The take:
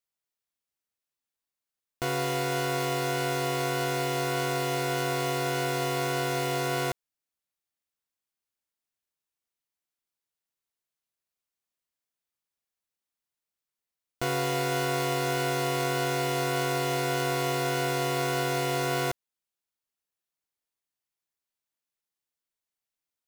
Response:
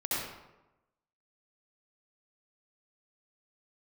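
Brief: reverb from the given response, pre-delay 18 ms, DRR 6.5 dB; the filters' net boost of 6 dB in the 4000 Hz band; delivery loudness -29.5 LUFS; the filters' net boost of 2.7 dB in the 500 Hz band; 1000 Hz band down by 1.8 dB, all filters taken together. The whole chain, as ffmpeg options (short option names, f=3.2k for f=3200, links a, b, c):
-filter_complex "[0:a]equalizer=f=500:t=o:g=5,equalizer=f=1k:t=o:g=-6.5,equalizer=f=4k:t=o:g=8,asplit=2[a][b];[1:a]atrim=start_sample=2205,adelay=18[c];[b][c]afir=irnorm=-1:irlink=0,volume=-13.5dB[d];[a][d]amix=inputs=2:normalize=0,volume=-5dB"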